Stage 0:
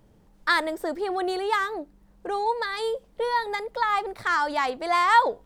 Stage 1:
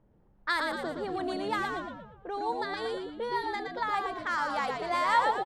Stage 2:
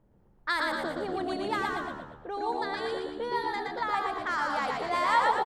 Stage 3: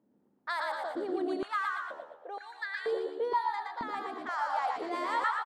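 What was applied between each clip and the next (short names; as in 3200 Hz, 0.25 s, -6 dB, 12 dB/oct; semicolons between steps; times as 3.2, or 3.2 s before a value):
frequency-shifting echo 0.117 s, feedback 50%, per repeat -76 Hz, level -4 dB; low-pass opened by the level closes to 1600 Hz, open at -19 dBFS; gain -7.5 dB
feedback echo 0.118 s, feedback 35%, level -5.5 dB
stepped high-pass 2.1 Hz 250–1700 Hz; gain -8.5 dB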